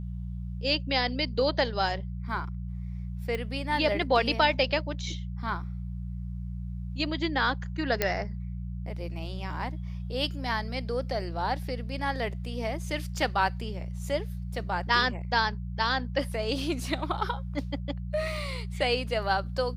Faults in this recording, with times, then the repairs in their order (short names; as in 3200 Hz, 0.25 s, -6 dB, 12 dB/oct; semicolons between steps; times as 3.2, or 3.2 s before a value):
hum 60 Hz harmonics 3 -35 dBFS
3.35 pop -20 dBFS
8.02 pop -9 dBFS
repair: de-click; de-hum 60 Hz, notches 3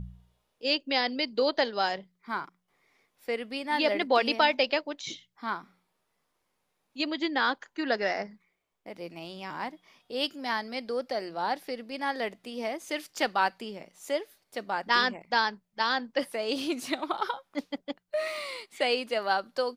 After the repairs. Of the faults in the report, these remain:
none